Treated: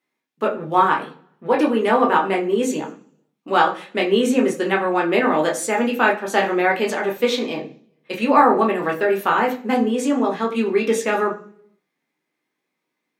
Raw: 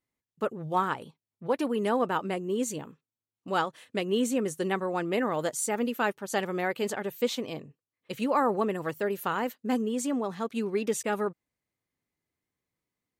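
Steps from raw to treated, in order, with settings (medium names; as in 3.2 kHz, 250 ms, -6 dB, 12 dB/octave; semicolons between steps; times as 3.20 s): high-pass 330 Hz 12 dB/octave; treble shelf 8.6 kHz -5 dB; reverberation RT60 0.55 s, pre-delay 12 ms, DRR -1 dB; trim +6 dB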